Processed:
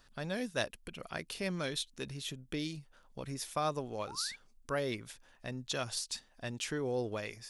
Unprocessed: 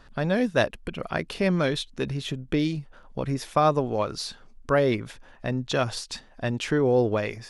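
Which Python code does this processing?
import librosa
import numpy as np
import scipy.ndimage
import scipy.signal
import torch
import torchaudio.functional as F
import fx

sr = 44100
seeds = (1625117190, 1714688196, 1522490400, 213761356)

y = F.preemphasis(torch.from_numpy(x), 0.8).numpy()
y = fx.spec_paint(y, sr, seeds[0], shape='rise', start_s=4.07, length_s=0.29, low_hz=740.0, high_hz=2400.0, level_db=-48.0)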